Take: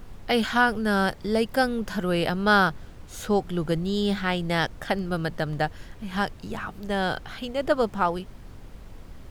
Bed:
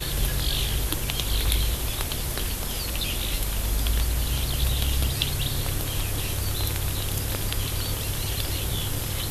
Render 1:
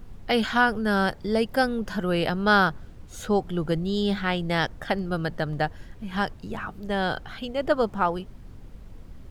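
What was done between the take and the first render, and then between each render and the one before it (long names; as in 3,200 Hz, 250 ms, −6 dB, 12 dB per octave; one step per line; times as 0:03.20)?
broadband denoise 6 dB, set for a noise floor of −45 dBFS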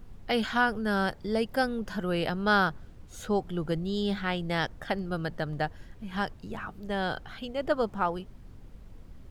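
level −4.5 dB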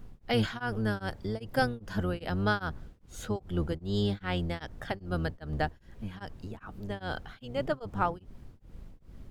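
sub-octave generator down 1 octave, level 0 dB
tremolo along a rectified sine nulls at 2.5 Hz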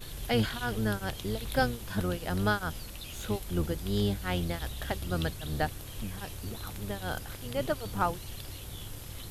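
mix in bed −15 dB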